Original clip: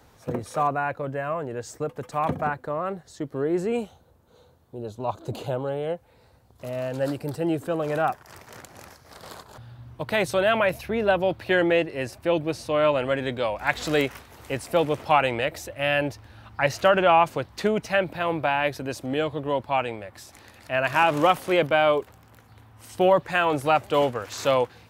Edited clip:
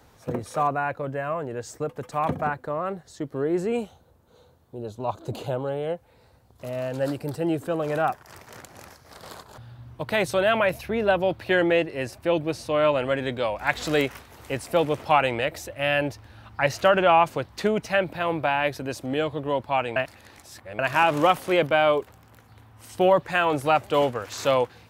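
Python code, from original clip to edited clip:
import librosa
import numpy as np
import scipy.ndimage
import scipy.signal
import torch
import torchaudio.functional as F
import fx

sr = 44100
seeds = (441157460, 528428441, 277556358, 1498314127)

y = fx.edit(x, sr, fx.reverse_span(start_s=19.96, length_s=0.83), tone=tone)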